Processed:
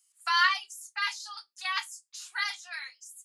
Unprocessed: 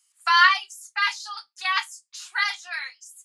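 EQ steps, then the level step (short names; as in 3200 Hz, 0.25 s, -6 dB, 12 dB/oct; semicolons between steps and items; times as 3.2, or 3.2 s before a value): high shelf 5400 Hz +9 dB; notches 60/120/180/240/300/360/420/480/540 Hz; -8.5 dB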